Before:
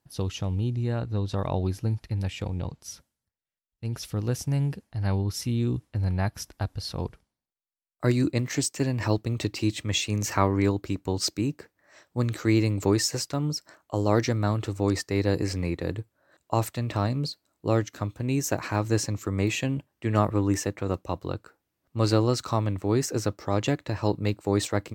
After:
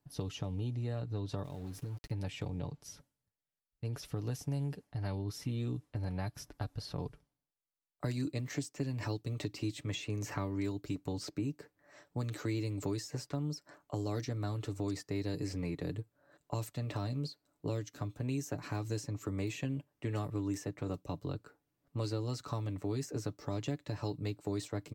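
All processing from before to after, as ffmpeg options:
-filter_complex "[0:a]asettb=1/sr,asplit=3[a][b][c];[a]atrim=end=1.444[d];[b]atrim=start=1.44:end=2.11,asetpts=PTS-STARTPTS,afade=t=in:d=0.004:c=qsin,afade=t=out:st=0.666:d=0.004:c=qsin,highshelf=f=5.1k:g=9.5,acompressor=threshold=-35dB:ratio=6:attack=3.2:release=140:knee=1:detection=peak,aeval=exprs='val(0)*gte(abs(val(0)),0.00447)':c=same[e];[c]atrim=start=2.106[f];[d][e]acrossfade=d=0.004:c1=hsin:c2=qsin[g];[g][f]acrossfade=d=0.004:c1=qsin:c2=hsin,tiltshelf=f=970:g=3.5,aecho=1:1:6.9:0.53,acrossover=split=310|2900[h][i][j];[h]acompressor=threshold=-33dB:ratio=4[k];[i]acompressor=threshold=-38dB:ratio=4[l];[j]acompressor=threshold=-43dB:ratio=4[m];[k][l][m]amix=inputs=3:normalize=0,volume=-4.5dB"

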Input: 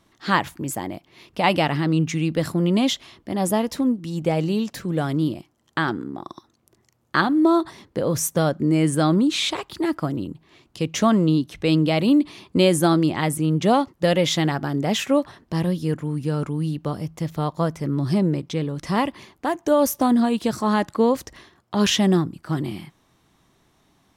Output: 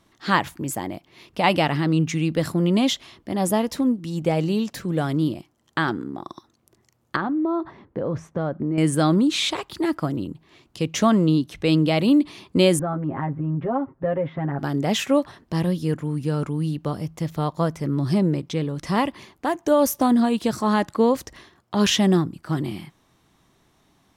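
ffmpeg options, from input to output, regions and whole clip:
-filter_complex "[0:a]asettb=1/sr,asplit=3[a][b][c];[a]atrim=end=7.164[d];[b]atrim=start=7.16:end=8.78,asetpts=PTS-STARTPTS,afade=t=in:d=0.004:c=qsin,afade=t=out:st=1.616:d=0.004:c=qsin,lowpass=1.6k,acompressor=threshold=-22dB:ratio=3:attack=3.2:release=140:knee=1:detection=peak[e];[c]atrim=start=8.776[f];[d][e]acrossfade=d=0.004:c1=hsin:c2=qsin[g];[g][f]acrossfade=d=0.004:c1=qsin:c2=hsin,asettb=1/sr,asplit=3[h][i][j];[h]atrim=end=12.794[k];[i]atrim=start=12.79:end=14.59,asetpts=PTS-STARTPTS,afade=t=in:d=0.004:c=qsin,afade=t=out:st=1.796:d=0.004:c=qsin,acompressor=threshold=-29dB:ratio=2:attack=3.2:release=140:knee=1:detection=peak,lowpass=f=1.6k:w=0.5412,lowpass=f=1.6k:w=1.3066,aecho=1:1:7.5:0.89,atrim=end_sample=79380[l];[j]atrim=start=14.586[m];[k][l]acrossfade=d=0.004:c1=hsin:c2=qsin[n];[n][m]acrossfade=d=0.004:c1=qsin:c2=hsin"

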